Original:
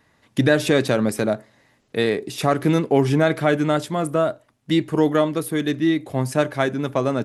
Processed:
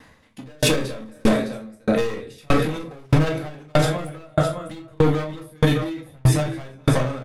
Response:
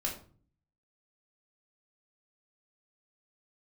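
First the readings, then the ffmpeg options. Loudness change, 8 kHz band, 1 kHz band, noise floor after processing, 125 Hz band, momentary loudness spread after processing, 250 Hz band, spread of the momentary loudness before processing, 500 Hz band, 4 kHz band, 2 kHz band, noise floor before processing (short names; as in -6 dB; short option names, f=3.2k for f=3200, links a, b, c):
-1.5 dB, +2.5 dB, -3.0 dB, -51 dBFS, +3.0 dB, 10 LU, -3.0 dB, 6 LU, -3.5 dB, +0.5 dB, -3.5 dB, -63 dBFS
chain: -filter_complex "[0:a]asubboost=boost=9.5:cutoff=81,aecho=1:1:207|233|408|609:0.112|0.112|0.133|0.282,volume=20dB,asoftclip=hard,volume=-20dB[a];[1:a]atrim=start_sample=2205,afade=t=out:st=0.14:d=0.01,atrim=end_sample=6615,asetrate=37485,aresample=44100[b];[a][b]afir=irnorm=-1:irlink=0,alimiter=level_in=15dB:limit=-1dB:release=50:level=0:latency=1,aeval=exprs='val(0)*pow(10,-38*if(lt(mod(1.6*n/s,1),2*abs(1.6)/1000),1-mod(1.6*n/s,1)/(2*abs(1.6)/1000),(mod(1.6*n/s,1)-2*abs(1.6)/1000)/(1-2*abs(1.6)/1000))/20)':c=same,volume=-4dB"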